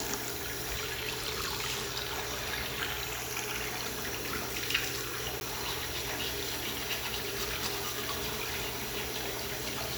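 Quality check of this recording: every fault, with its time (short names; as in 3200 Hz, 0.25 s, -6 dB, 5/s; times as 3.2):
5.4–5.41 gap 11 ms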